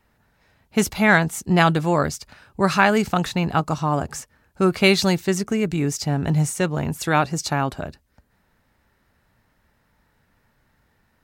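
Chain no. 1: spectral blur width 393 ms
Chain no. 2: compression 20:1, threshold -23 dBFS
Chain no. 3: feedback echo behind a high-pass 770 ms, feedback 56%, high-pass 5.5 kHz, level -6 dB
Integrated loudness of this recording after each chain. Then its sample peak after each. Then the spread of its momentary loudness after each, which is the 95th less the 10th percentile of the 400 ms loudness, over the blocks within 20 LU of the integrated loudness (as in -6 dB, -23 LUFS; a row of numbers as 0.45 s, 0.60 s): -26.0 LUFS, -29.0 LUFS, -21.0 LUFS; -10.0 dBFS, -12.0 dBFS, -2.5 dBFS; 12 LU, 6 LU, 16 LU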